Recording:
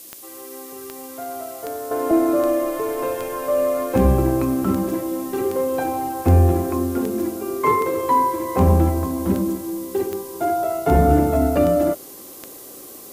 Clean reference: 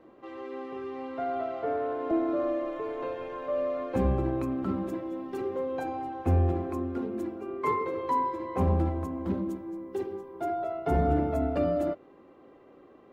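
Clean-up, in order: de-click; noise print and reduce 14 dB; gain correction -10 dB, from 1.91 s

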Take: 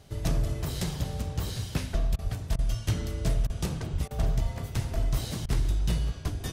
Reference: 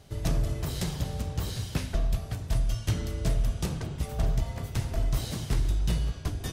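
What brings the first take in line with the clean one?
de-plosive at 2.23/3.92/4.42/5.43 s; interpolate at 2.16/2.56/3.47/4.08/5.46 s, 26 ms

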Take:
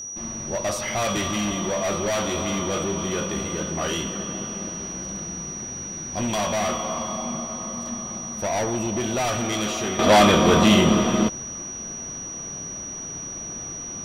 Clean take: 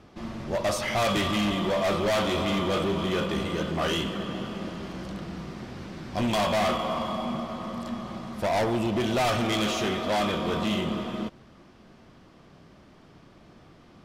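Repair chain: band-stop 5.8 kHz, Q 30; gain correction -11.5 dB, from 9.99 s

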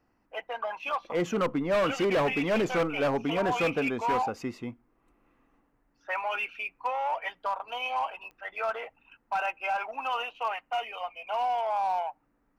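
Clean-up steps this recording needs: clip repair -22 dBFS; de-click

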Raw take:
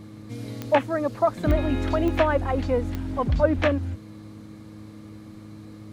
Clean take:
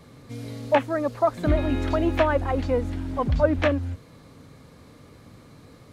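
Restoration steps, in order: de-click; de-hum 105.7 Hz, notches 3

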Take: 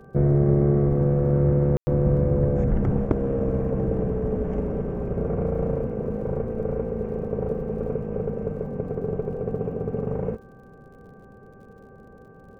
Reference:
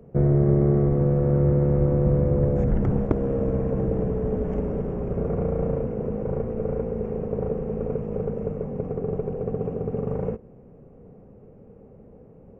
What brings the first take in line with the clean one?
de-click; de-hum 390 Hz, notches 4; room tone fill 1.77–1.87 s

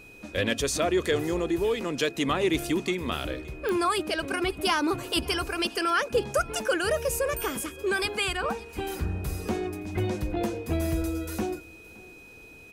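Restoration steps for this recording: clip repair -15 dBFS; de-click; band-stop 2.5 kHz, Q 30; inverse comb 570 ms -22.5 dB

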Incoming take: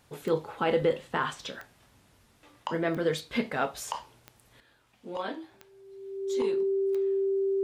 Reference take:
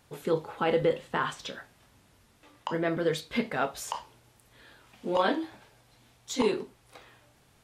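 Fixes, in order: de-click; band-stop 390 Hz, Q 30; gain correction +9 dB, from 4.60 s

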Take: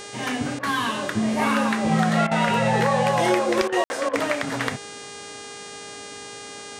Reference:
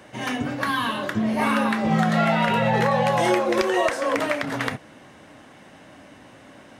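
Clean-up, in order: de-hum 406.6 Hz, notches 23; band-stop 460 Hz, Q 30; room tone fill 3.84–3.90 s; interpolate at 0.59/2.27/3.68/4.09 s, 42 ms

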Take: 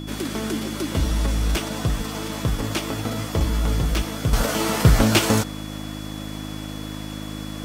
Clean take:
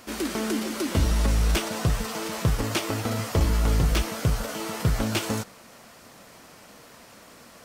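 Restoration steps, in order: de-hum 52.1 Hz, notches 6; band-stop 3.4 kHz, Q 30; trim 0 dB, from 4.33 s -9 dB

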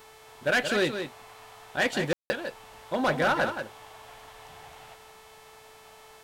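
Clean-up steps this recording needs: de-click; de-hum 437.7 Hz, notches 36; room tone fill 2.13–2.30 s; inverse comb 176 ms -8 dB

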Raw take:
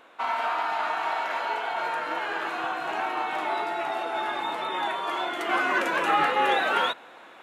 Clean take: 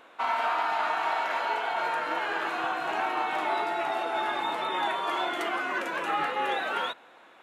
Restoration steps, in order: gain correction -6 dB, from 5.49 s

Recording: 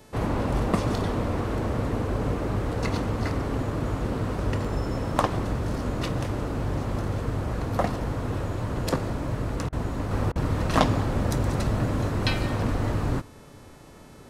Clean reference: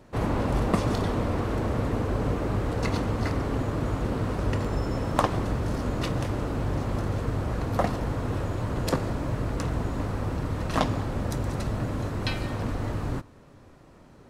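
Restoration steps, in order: de-hum 434.2 Hz, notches 29; interpolate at 9.69/10.32 s, 35 ms; gain correction -4 dB, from 10.11 s

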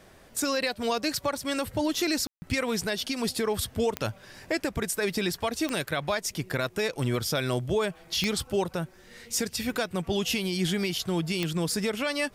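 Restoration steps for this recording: de-click; room tone fill 2.27–2.42 s

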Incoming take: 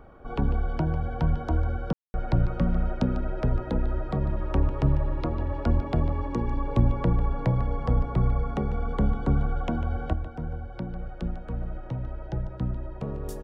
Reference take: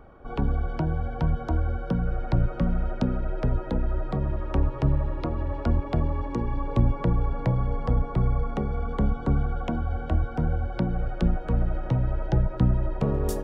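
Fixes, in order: room tone fill 1.93–2.14 s; inverse comb 148 ms -14 dB; gain correction +8 dB, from 10.13 s

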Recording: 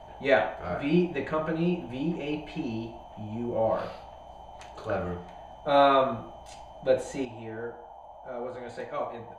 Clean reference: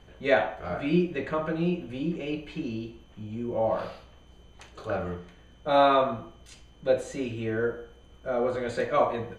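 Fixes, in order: noise print and reduce 6 dB; gain correction +9.5 dB, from 7.25 s

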